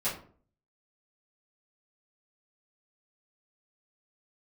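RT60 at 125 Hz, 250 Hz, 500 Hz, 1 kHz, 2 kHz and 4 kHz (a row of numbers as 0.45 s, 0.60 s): 0.65 s, 0.55 s, 0.50 s, 0.45 s, 0.35 s, 0.25 s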